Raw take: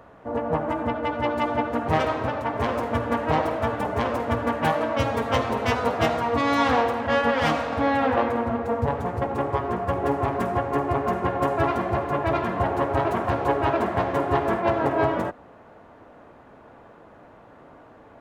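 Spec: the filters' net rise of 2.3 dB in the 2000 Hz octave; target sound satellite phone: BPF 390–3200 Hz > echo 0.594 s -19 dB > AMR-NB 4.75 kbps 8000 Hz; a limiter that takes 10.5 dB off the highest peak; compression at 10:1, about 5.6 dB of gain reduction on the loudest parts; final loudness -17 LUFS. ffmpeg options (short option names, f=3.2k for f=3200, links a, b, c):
-af "equalizer=f=2k:t=o:g=3.5,acompressor=threshold=-22dB:ratio=10,alimiter=limit=-22dB:level=0:latency=1,highpass=390,lowpass=3.2k,aecho=1:1:594:0.112,volume=18.5dB" -ar 8000 -c:a libopencore_amrnb -b:a 4750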